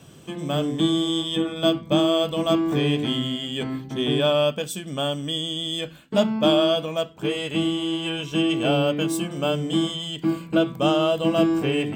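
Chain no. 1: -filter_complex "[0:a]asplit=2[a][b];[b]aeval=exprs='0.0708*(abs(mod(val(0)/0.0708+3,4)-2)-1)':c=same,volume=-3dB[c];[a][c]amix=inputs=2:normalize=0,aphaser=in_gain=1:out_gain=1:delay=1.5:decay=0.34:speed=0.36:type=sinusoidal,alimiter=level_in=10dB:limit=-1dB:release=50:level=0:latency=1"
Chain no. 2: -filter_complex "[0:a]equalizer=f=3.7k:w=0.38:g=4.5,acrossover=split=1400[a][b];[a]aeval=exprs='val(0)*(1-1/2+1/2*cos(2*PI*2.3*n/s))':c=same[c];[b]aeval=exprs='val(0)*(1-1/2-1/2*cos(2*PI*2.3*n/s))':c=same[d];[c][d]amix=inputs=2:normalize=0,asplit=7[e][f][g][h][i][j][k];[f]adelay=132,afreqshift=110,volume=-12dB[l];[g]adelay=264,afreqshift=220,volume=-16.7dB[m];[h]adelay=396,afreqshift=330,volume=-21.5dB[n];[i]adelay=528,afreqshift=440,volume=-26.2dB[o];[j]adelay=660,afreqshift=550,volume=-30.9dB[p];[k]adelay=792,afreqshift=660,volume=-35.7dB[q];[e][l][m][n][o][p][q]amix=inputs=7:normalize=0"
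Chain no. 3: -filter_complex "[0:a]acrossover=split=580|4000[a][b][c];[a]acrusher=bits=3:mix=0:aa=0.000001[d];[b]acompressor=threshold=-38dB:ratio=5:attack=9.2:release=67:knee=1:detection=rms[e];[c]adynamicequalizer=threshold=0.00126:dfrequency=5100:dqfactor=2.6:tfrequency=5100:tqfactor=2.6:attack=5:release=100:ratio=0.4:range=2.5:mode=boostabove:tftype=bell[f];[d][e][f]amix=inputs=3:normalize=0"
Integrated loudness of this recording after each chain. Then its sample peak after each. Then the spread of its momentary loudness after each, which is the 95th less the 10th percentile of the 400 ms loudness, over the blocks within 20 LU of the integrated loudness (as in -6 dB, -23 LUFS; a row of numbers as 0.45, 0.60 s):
-11.0, -26.0, -24.0 LUFS; -1.0, -8.5, -9.0 dBFS; 6, 8, 10 LU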